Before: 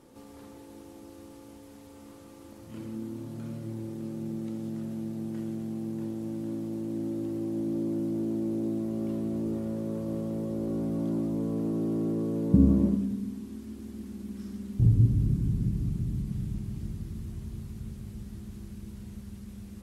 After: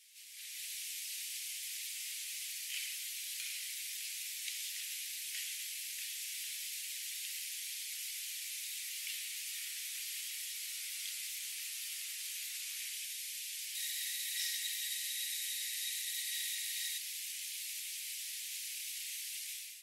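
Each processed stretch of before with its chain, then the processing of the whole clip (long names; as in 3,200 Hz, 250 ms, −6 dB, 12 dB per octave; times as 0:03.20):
0:13.75–0:16.98: high-shelf EQ 5,800 Hz +4 dB + hollow resonant body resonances 1,900/3,800 Hz, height 14 dB, ringing for 25 ms
whole clip: Butterworth high-pass 2,100 Hz 48 dB per octave; automatic gain control gain up to 13 dB; level +7 dB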